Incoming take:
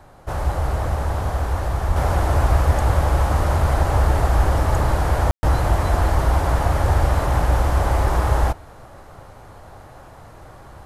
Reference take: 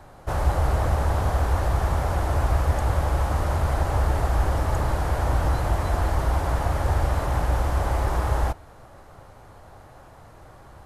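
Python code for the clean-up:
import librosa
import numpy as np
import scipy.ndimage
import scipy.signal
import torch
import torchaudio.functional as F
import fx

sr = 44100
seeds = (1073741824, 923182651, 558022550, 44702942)

y = fx.fix_deplosive(x, sr, at_s=(1.87, 6.82, 7.98))
y = fx.fix_ambience(y, sr, seeds[0], print_start_s=9.87, print_end_s=10.37, start_s=5.31, end_s=5.43)
y = fx.fix_level(y, sr, at_s=1.96, step_db=-5.0)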